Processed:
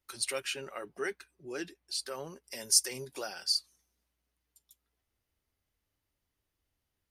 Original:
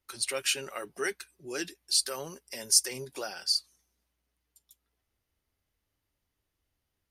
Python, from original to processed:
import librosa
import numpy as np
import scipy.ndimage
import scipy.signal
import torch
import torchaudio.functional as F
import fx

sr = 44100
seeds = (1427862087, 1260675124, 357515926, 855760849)

y = fx.high_shelf(x, sr, hz=3500.0, db=-11.5, at=(0.4, 2.44))
y = y * librosa.db_to_amplitude(-2.0)